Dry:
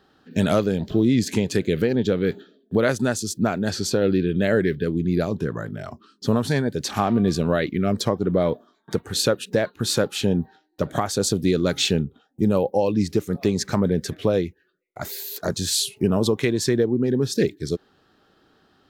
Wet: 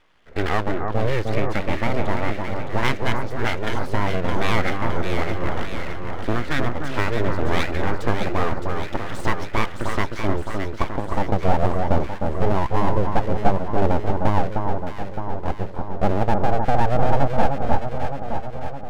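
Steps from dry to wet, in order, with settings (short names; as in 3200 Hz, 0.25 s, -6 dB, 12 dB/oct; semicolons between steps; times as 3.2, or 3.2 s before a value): low-pass sweep 1900 Hz -> 400 Hz, 10.01–11.01; full-wave rectifier; on a send: echo with dull and thin repeats by turns 0.307 s, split 1500 Hz, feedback 78%, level -4 dB; on the sum: gain -1 dB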